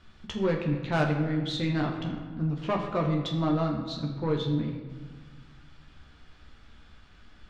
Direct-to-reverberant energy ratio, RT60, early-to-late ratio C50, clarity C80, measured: 0.0 dB, 1.5 s, 5.5 dB, 7.0 dB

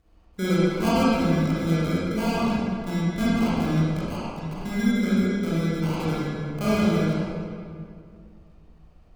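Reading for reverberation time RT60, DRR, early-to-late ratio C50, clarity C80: 2.2 s, −9.0 dB, −5.5 dB, −2.5 dB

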